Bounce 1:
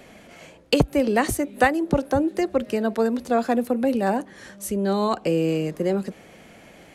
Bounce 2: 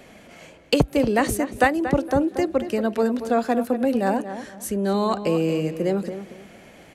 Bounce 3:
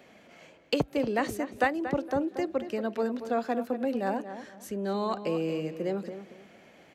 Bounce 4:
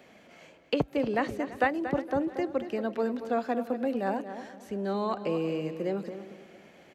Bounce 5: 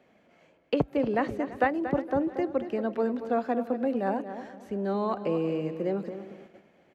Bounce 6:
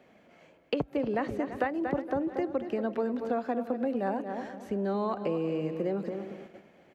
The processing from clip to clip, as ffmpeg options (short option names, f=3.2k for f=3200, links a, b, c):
-filter_complex "[0:a]asplit=2[a][b];[b]adelay=232,lowpass=f=2.7k:p=1,volume=-10.5dB,asplit=2[c][d];[d]adelay=232,lowpass=f=2.7k:p=1,volume=0.26,asplit=2[e][f];[f]adelay=232,lowpass=f=2.7k:p=1,volume=0.26[g];[a][c][e][g]amix=inputs=4:normalize=0"
-af "highpass=f=180:p=1,equalizer=f=9.9k:t=o:w=0.77:g=-10.5,volume=-7dB"
-filter_complex "[0:a]acrossover=split=3900[a][b];[b]acompressor=threshold=-57dB:ratio=4:attack=1:release=60[c];[a][c]amix=inputs=2:normalize=0,aecho=1:1:337|674|1011:0.119|0.0475|0.019"
-af "highshelf=f=2.7k:g=-10,agate=range=-8dB:threshold=-51dB:ratio=16:detection=peak,volume=2dB"
-af "acompressor=threshold=-31dB:ratio=3,volume=3dB"